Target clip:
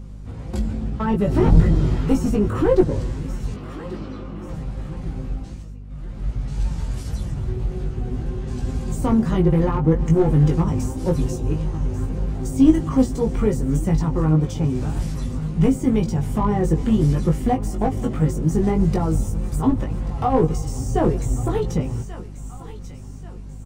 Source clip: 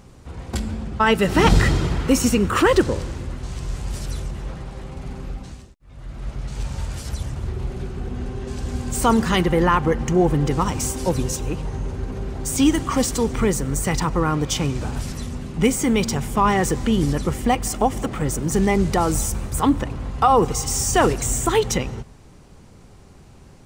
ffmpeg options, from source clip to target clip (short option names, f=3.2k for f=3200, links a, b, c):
-filter_complex "[0:a]asettb=1/sr,asplit=3[a][b][c];[a]atrim=end=3.544[d];[b]atrim=start=3.54:end=4.49,asetpts=PTS-STARTPTS,afade=t=in:d=0.004:c=qsin,afade=t=out:st=0.946:d=0.004:c=qsin,highpass=f=190:w=0.5412,highpass=f=190:w=1.3066,equalizer=f=200:t=q:w=4:g=5,equalizer=f=310:t=q:w=4:g=9,equalizer=f=490:t=q:w=4:g=4,equalizer=f=1.2k:t=q:w=4:g=9,equalizer=f=1.8k:t=q:w=4:g=-4,equalizer=f=3.6k:t=q:w=4:g=-4,lowpass=f=3.8k:w=0.5412,lowpass=f=3.8k:w=1.3066[e];[c]atrim=start=4.486[f];[d][e]acrossfade=d=0.004:c1=hsin:c2=qsin[g];[g][f]acrossfade=d=0.004:c1=qsin:c2=hsin,aecho=1:1:1136|2272|3408:0.0891|0.0357|0.0143,acrossover=split=940[h][i];[i]acompressor=threshold=-34dB:ratio=6[j];[h][j]amix=inputs=2:normalize=0,aeval=exprs='clip(val(0),-1,0.211)':c=same,flanger=delay=5.5:depth=2.7:regen=43:speed=1.8:shape=sinusoidal,asplit=2[k][l];[l]adelay=19,volume=-3.5dB[m];[k][m]amix=inputs=2:normalize=0,aeval=exprs='val(0)+0.00891*(sin(2*PI*50*n/s)+sin(2*PI*2*50*n/s)/2+sin(2*PI*3*50*n/s)/3+sin(2*PI*4*50*n/s)/4+sin(2*PI*5*50*n/s)/5)':c=same,lowshelf=f=390:g=9.5,volume=-2.5dB"